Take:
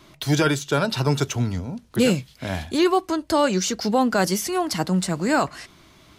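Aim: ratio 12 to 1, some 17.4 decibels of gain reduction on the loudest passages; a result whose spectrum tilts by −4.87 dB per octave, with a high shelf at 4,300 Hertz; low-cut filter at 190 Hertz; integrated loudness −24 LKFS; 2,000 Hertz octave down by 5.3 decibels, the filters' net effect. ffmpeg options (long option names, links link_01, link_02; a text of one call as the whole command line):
ffmpeg -i in.wav -af "highpass=190,equalizer=frequency=2000:width_type=o:gain=-6.5,highshelf=frequency=4300:gain=-7.5,acompressor=threshold=-33dB:ratio=12,volume=14dB" out.wav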